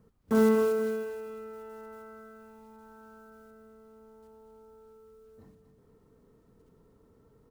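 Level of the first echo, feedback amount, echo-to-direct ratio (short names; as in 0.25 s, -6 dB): -9.5 dB, 42%, -8.5 dB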